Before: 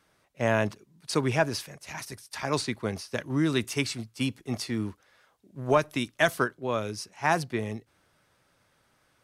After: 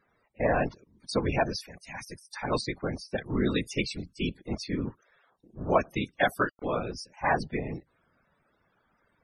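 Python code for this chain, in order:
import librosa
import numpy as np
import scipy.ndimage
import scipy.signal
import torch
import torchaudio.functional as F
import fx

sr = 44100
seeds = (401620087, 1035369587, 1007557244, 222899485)

y = fx.whisperise(x, sr, seeds[0])
y = fx.sample_gate(y, sr, floor_db=-40.5, at=(6.38, 6.92), fade=0.02)
y = fx.spec_topn(y, sr, count=64)
y = y * librosa.db_to_amplitude(-1.0)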